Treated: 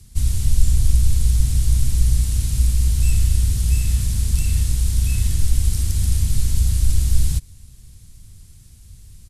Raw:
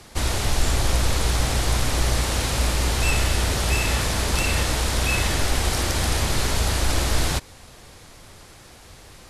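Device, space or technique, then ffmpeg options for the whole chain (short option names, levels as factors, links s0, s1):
low shelf boost with a cut just above: -af "firequalizer=gain_entry='entry(100,0);entry(580,-28);entry(2800,-16);entry(8500,-3)':delay=0.05:min_phase=1,lowshelf=f=89:g=5.5,equalizer=f=330:t=o:w=0.81:g=-5.5,volume=1.41"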